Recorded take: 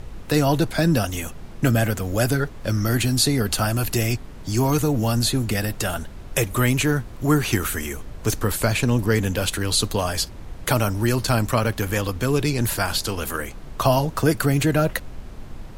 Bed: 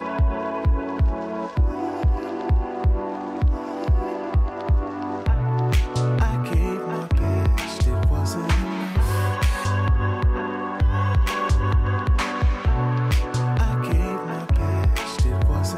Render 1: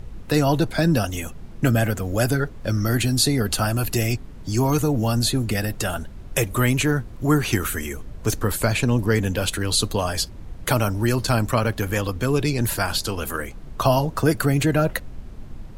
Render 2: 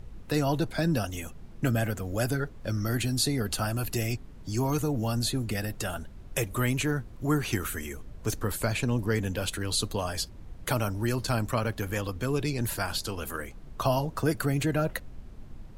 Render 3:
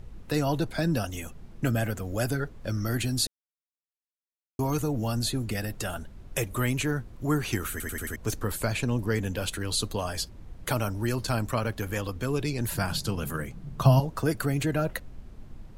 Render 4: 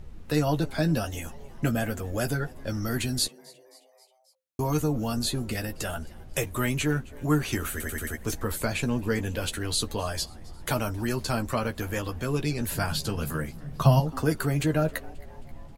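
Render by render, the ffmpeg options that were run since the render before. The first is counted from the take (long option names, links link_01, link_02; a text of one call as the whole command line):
ffmpeg -i in.wav -af "afftdn=noise_reduction=6:noise_floor=-38" out.wav
ffmpeg -i in.wav -af "volume=-7.5dB" out.wav
ffmpeg -i in.wav -filter_complex "[0:a]asettb=1/sr,asplit=3[link_01][link_02][link_03];[link_01]atrim=end=12.734[link_04];[link_02]atrim=start=12.73:end=14,asetpts=PTS-STARTPTS,afade=type=in:duration=0.004:curve=qsin,afade=type=out:start_time=1.266:duration=0.004:curve=qsin,equalizer=frequency=150:width=1.5:gain=15[link_05];[link_03]atrim=start=13.996[link_06];[link_04][link_05]acrossfade=duration=0.004:curve1=hsin:curve2=qsin[link_07];[link_07][link_06]acrossfade=duration=0.004:curve1=qsin:curve2=hsin,asplit=8[link_08][link_09][link_10][link_11][link_12][link_13][link_14][link_15];[link_08]atrim=end=3.27,asetpts=PTS-STARTPTS,afade=type=out:start_time=3.266:duration=0.004:curve=hsin[link_16];[link_09]atrim=start=3.27:end=4.59,asetpts=PTS-STARTPTS,volume=0[link_17];[link_10]atrim=start=4.59:end=7.802,asetpts=PTS-STARTPTS,afade=type=in:duration=0.004:curve=hsin[link_18];[link_11]atrim=start=7.708:end=7.802[link_19];[link_12]atrim=start=7.708:end=7.802[link_20];[link_13]atrim=start=7.708:end=7.802[link_21];[link_14]atrim=start=7.708:end=7.802[link_22];[link_15]atrim=start=8.158[link_23];[link_16][link_17][link_18]concat=n=3:v=0:a=1[link_24];[link_24][link_19]acrossfade=duration=0.004:curve1=hsin:curve2=hsin[link_25];[link_25][link_20]acrossfade=duration=0.004:curve1=hsin:curve2=hsin[link_26];[link_26][link_21]acrossfade=duration=0.004:curve1=hsin:curve2=hsin[link_27];[link_27][link_22]acrossfade=duration=0.004:curve1=hsin:curve2=hsin[link_28];[link_28][link_23]acrossfade=duration=0.004:curve1=hsin:curve2=hsin" out.wav
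ffmpeg -i in.wav -filter_complex "[0:a]asplit=2[link_01][link_02];[link_02]adelay=13,volume=-7dB[link_03];[link_01][link_03]amix=inputs=2:normalize=0,asplit=5[link_04][link_05][link_06][link_07][link_08];[link_05]adelay=267,afreqshift=130,volume=-24dB[link_09];[link_06]adelay=534,afreqshift=260,volume=-28.4dB[link_10];[link_07]adelay=801,afreqshift=390,volume=-32.9dB[link_11];[link_08]adelay=1068,afreqshift=520,volume=-37.3dB[link_12];[link_04][link_09][link_10][link_11][link_12]amix=inputs=5:normalize=0" out.wav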